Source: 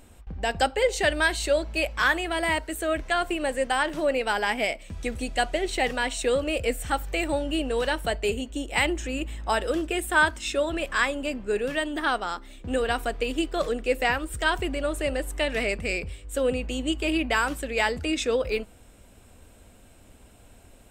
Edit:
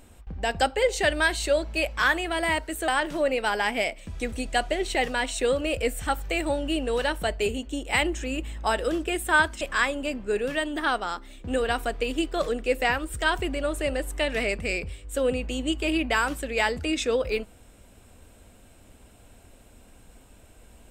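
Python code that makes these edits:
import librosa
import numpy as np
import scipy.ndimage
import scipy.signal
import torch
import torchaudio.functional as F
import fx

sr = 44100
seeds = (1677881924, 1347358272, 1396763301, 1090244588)

y = fx.edit(x, sr, fx.cut(start_s=2.88, length_s=0.83),
    fx.cut(start_s=10.44, length_s=0.37), tone=tone)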